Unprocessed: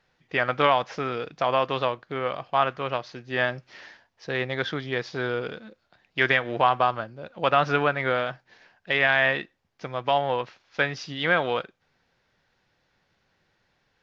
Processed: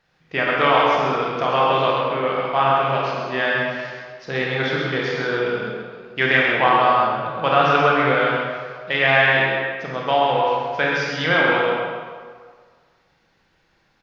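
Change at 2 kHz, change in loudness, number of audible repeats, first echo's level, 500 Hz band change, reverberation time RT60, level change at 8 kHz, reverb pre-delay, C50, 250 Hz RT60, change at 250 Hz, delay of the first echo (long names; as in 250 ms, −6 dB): +6.5 dB, +6.5 dB, 1, −4.5 dB, +6.5 dB, 1.8 s, can't be measured, 25 ms, −2.5 dB, 1.5 s, +7.0 dB, 132 ms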